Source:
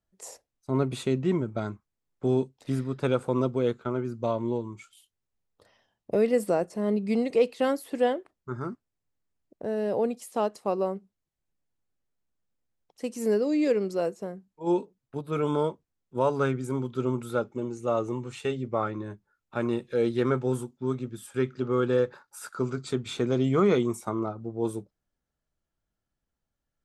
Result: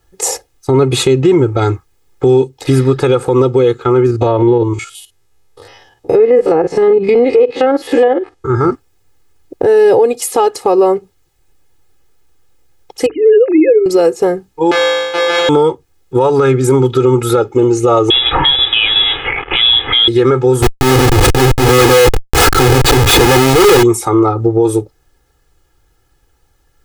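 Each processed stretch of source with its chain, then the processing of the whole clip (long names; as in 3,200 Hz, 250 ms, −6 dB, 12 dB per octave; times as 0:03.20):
0:04.06–0:08.72: spectrum averaged block by block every 50 ms + treble cut that deepens with the level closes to 1,800 Hz, closed at −21 dBFS + downward compressor 2 to 1, threshold −27 dBFS
0:13.06–0:13.86: three sine waves on the formant tracks + dynamic equaliser 910 Hz, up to −6 dB, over −36 dBFS, Q 0.79 + mains-hum notches 50/100/150/200/250/300/350 Hz
0:14.71–0:15.49: samples sorted by size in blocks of 256 samples + band-pass filter 600–3,800 Hz + flutter between parallel walls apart 3.3 metres, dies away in 0.92 s
0:18.10–0:20.08: spike at every zero crossing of −21.5 dBFS + high-pass filter 150 Hz + voice inversion scrambler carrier 3,700 Hz
0:20.62–0:23.83: linear delta modulator 64 kbit/s, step −41 dBFS + notch comb filter 200 Hz + comparator with hysteresis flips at −41.5 dBFS
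whole clip: comb filter 2.4 ms, depth 90%; downward compressor 2.5 to 1, threshold −32 dBFS; boost into a limiter +25.5 dB; level −1 dB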